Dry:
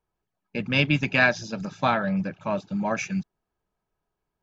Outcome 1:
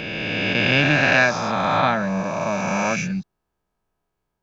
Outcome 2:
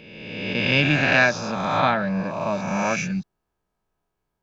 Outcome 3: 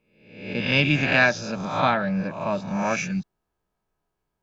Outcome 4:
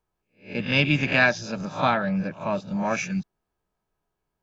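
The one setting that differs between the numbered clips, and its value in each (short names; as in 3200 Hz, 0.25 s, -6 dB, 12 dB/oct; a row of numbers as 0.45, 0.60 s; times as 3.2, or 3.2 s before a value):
spectral swells, rising 60 dB in: 3.06, 1.46, 0.7, 0.33 s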